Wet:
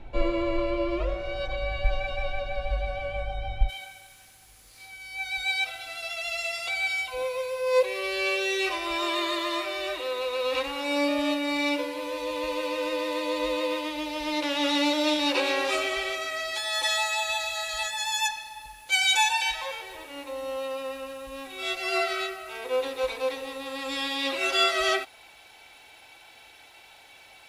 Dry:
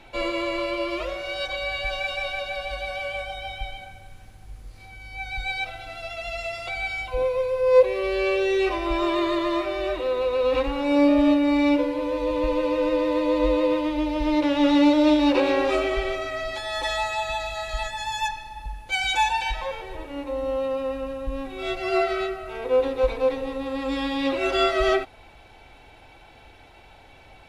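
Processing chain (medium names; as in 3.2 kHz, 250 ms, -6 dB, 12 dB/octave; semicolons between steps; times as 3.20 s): tilt EQ -3 dB/octave, from 3.68 s +4 dB/octave; trim -3 dB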